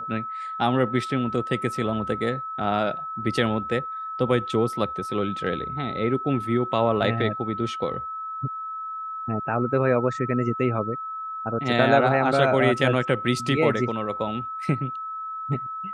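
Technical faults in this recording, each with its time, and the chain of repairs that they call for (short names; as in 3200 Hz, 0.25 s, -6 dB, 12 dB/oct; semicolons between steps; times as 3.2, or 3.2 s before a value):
tone 1300 Hz -30 dBFS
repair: notch 1300 Hz, Q 30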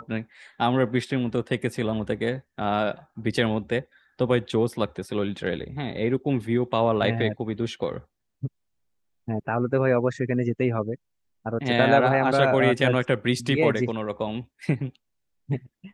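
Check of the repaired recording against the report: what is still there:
none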